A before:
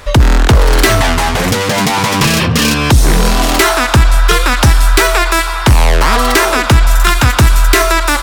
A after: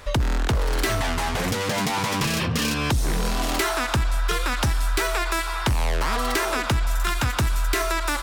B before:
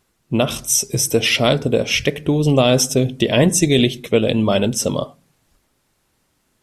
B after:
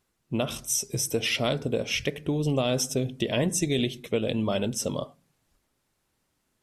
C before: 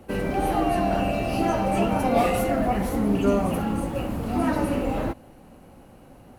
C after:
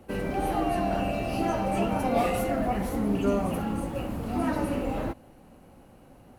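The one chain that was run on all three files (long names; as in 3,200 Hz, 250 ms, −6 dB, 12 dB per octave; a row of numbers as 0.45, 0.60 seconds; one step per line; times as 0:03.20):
downward compressor 2.5 to 1, threshold −12 dBFS
normalise the peak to −12 dBFS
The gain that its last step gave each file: −9.5, −9.5, −4.0 decibels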